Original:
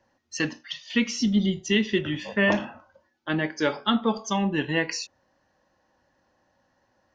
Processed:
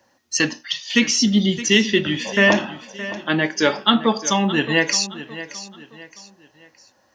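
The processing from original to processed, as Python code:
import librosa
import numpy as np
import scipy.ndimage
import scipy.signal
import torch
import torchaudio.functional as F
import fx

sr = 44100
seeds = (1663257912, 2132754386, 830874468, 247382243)

y = fx.highpass(x, sr, hz=140.0, slope=6)
y = fx.high_shelf(y, sr, hz=4800.0, db=11.0)
y = fx.echo_feedback(y, sr, ms=618, feedback_pct=37, wet_db=-14.5)
y = F.gain(torch.from_numpy(y), 6.5).numpy()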